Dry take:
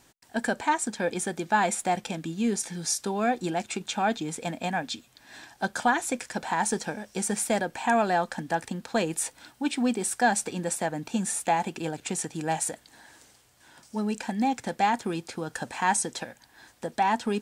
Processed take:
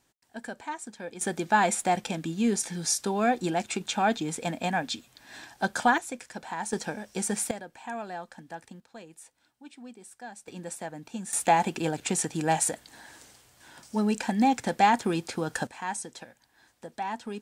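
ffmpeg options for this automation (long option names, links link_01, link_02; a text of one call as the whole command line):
ffmpeg -i in.wav -af "asetnsamples=nb_out_samples=441:pad=0,asendcmd='1.21 volume volume 1dB;5.98 volume volume -7.5dB;6.73 volume volume -1dB;7.51 volume volume -13dB;8.8 volume volume -20dB;10.48 volume volume -8.5dB;11.33 volume volume 3dB;15.67 volume volume -9dB',volume=-11dB" out.wav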